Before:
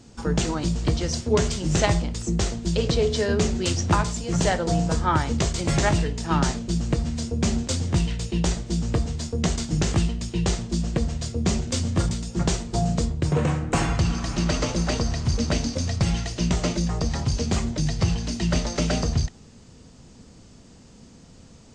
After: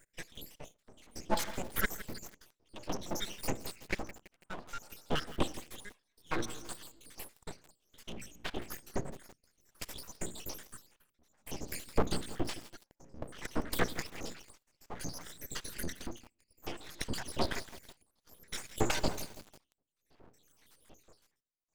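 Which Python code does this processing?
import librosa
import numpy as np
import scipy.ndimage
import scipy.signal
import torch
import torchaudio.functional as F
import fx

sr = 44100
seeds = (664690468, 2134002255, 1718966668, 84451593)

y = fx.spec_dropout(x, sr, seeds[0], share_pct=84)
y = fx.highpass(y, sr, hz=73.0, slope=6)
y = fx.hum_notches(y, sr, base_hz=60, count=8)
y = fx.room_shoebox(y, sr, seeds[1], volume_m3=3100.0, walls='furnished', distance_m=0.52)
y = y * (1.0 - 0.98 / 2.0 + 0.98 / 2.0 * np.cos(2.0 * np.pi * 0.58 * (np.arange(len(y)) / sr)))
y = fx.high_shelf(y, sr, hz=2100.0, db=-7.0, at=(3.5, 5.63))
y = np.abs(y)
y = fx.low_shelf(y, sr, hz=290.0, db=-4.0)
y = fx.echo_crushed(y, sr, ms=165, feedback_pct=55, bits=7, wet_db=-14.5)
y = y * librosa.db_to_amplitude(4.0)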